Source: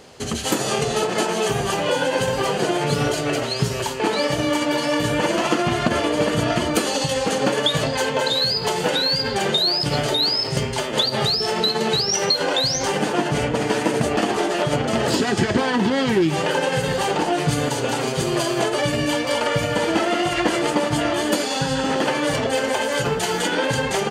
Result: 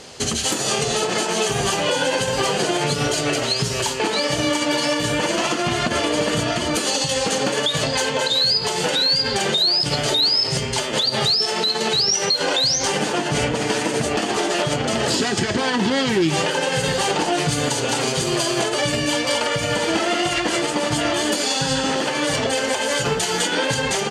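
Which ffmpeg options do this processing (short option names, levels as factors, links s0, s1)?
-filter_complex "[0:a]asettb=1/sr,asplit=3[s0][s1][s2];[s0]atrim=end=11.324[s3];[s1]atrim=start=11.32:end=11.93,asetpts=PTS-STARTPTS,afade=t=in:d=0.004:c=qsin,afade=t=out:st=0.606:d=0.004:c=qsin,highpass=f=210:p=1[s4];[s2]atrim=start=11.926[s5];[s3][s4]acrossfade=d=0.004:c1=hsin:c2=qsin[s6];[s6][s5]acrossfade=d=0.004:c1=qsin:c2=hsin,lowpass=8700,highshelf=f=3200:g=10,alimiter=limit=0.211:level=0:latency=1:release=253,volume=1.41"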